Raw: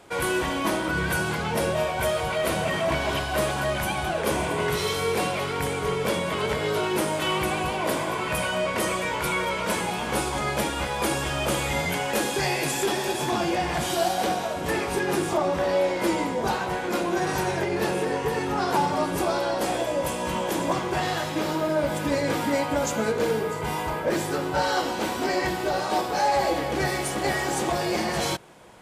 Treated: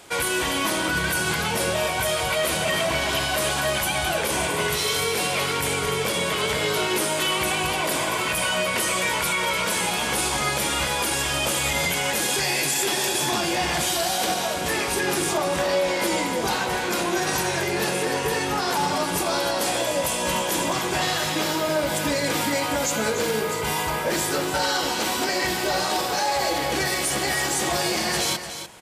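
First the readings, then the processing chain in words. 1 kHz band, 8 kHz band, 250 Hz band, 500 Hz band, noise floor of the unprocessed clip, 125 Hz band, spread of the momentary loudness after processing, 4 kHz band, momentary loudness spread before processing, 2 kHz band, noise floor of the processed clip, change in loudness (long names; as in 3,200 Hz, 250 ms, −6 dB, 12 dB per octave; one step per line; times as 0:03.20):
+0.5 dB, +8.5 dB, −1.0 dB, −0.5 dB, −30 dBFS, −1.0 dB, 2 LU, +7.0 dB, 3 LU, +4.0 dB, −26 dBFS, +3.0 dB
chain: high-shelf EQ 2,000 Hz +11.5 dB
brickwall limiter −14.5 dBFS, peak gain reduction 9 dB
on a send: single-tap delay 296 ms −10 dB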